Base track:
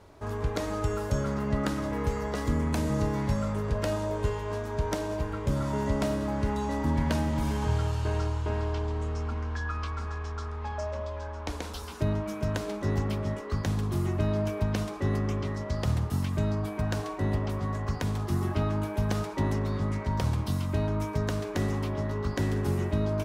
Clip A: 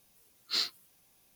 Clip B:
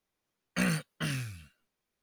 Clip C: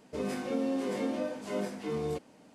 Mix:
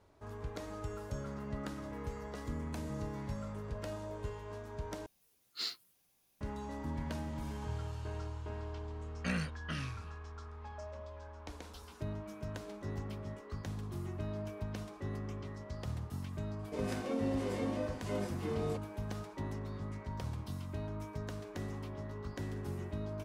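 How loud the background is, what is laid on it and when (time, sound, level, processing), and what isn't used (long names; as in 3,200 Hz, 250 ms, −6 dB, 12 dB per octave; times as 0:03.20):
base track −12.5 dB
0:05.06: overwrite with A −8 dB
0:08.68: mix in B −6.5 dB + low-pass filter 6,200 Hz
0:16.59: mix in C −4 dB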